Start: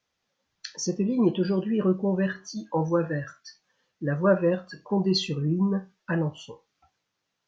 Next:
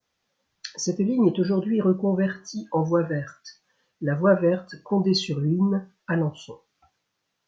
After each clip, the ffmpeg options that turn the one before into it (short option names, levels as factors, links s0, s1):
-af "adynamicequalizer=threshold=0.00447:dfrequency=2800:dqfactor=0.94:tfrequency=2800:tqfactor=0.94:attack=5:release=100:ratio=0.375:range=2.5:mode=cutabove:tftype=bell,volume=1.33"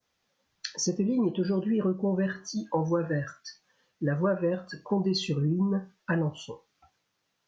-af "acompressor=threshold=0.0708:ratio=6"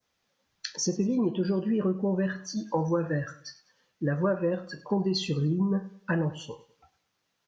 -af "aecho=1:1:101|202|303:0.126|0.0478|0.0182"